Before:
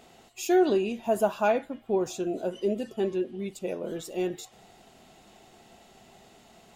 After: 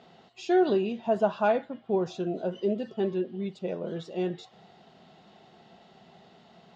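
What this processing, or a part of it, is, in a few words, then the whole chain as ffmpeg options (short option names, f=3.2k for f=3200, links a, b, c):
guitar cabinet: -af "highpass=110,equalizer=f=170:t=q:w=4:g=7,equalizer=f=300:t=q:w=4:g=-4,equalizer=f=2.4k:t=q:w=4:g=-6,lowpass=f=4.6k:w=0.5412,lowpass=f=4.6k:w=1.3066"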